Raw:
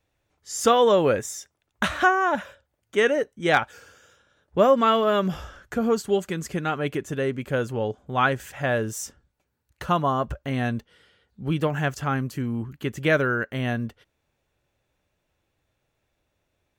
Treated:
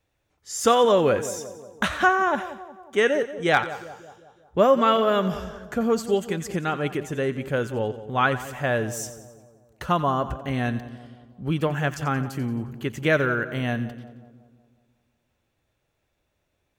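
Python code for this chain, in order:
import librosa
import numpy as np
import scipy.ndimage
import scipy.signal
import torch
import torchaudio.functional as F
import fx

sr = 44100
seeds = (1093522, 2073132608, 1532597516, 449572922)

y = fx.echo_split(x, sr, split_hz=980.0, low_ms=183, high_ms=89, feedback_pct=52, wet_db=-13.5)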